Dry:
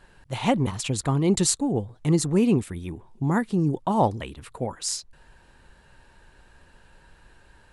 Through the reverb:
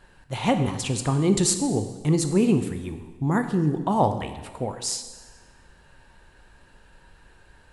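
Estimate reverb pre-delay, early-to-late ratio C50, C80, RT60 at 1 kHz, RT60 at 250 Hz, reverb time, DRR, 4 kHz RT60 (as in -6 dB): 7 ms, 9.5 dB, 11.0 dB, 1.3 s, 1.3 s, 1.3 s, 7.5 dB, 1.2 s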